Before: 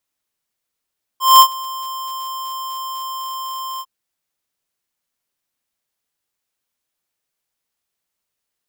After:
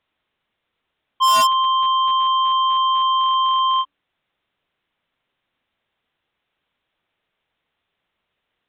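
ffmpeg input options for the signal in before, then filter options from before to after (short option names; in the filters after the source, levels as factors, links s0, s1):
-f lavfi -i "aevalsrc='0.562*(2*lt(mod(1050*t,1),0.5)-1)':d=2.652:s=44100,afade=t=in:d=0.199,afade=t=out:st=0.199:d=0.074:silence=0.0794,afade=t=out:st=2.6:d=0.052"
-af "aresample=8000,aeval=exprs='0.708*sin(PI/2*2*val(0)/0.708)':c=same,aresample=44100,bandreject=f=287.4:t=h:w=4,bandreject=f=574.8:t=h:w=4,bandreject=f=862.2:t=h:w=4,bandreject=f=1149.6:t=h:w=4,bandreject=f=1437:t=h:w=4,bandreject=f=1724.4:t=h:w=4,asoftclip=type=hard:threshold=0.211"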